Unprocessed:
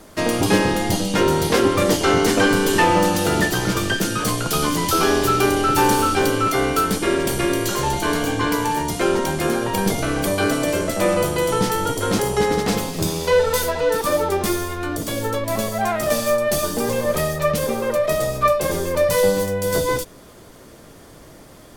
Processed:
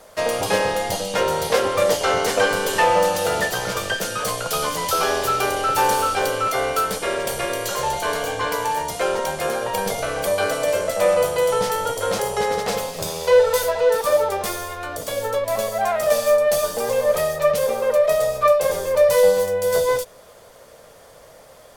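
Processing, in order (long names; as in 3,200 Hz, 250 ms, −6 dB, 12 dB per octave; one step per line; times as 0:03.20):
low shelf with overshoot 410 Hz −7.5 dB, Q 3
level −2 dB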